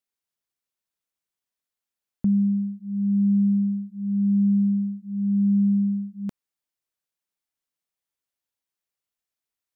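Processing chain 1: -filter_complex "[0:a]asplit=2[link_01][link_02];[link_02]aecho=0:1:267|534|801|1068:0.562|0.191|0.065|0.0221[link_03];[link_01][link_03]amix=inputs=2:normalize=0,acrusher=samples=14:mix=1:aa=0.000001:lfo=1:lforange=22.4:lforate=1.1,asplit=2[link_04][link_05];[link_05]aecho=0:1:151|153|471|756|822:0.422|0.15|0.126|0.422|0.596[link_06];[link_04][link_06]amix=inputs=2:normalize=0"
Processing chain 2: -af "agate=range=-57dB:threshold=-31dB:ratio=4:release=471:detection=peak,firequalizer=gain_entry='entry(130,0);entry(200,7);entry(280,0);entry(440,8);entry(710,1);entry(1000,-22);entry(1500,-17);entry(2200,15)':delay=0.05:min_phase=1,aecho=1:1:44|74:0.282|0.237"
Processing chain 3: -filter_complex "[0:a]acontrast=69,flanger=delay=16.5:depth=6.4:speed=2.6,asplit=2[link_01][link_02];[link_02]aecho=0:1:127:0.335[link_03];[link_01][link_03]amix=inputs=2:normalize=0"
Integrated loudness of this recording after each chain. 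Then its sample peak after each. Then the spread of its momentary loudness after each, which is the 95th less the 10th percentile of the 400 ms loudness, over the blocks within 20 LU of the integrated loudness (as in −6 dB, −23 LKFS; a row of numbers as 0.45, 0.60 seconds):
−24.0, −14.0, −23.0 LKFS; −12.5, −7.0, −10.0 dBFS; 13, 9, 9 LU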